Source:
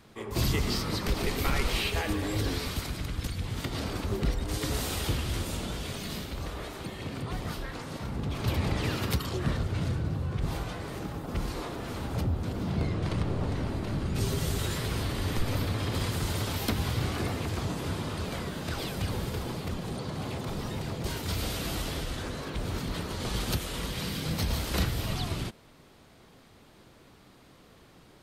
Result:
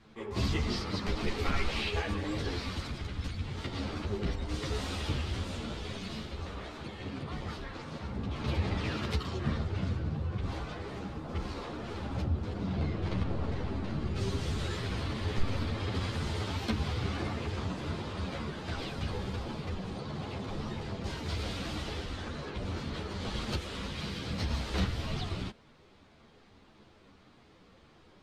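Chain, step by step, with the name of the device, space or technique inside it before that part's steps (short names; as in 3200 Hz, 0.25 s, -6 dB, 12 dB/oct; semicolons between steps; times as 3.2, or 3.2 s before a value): string-machine ensemble chorus (ensemble effect; LPF 5200 Hz 12 dB/oct)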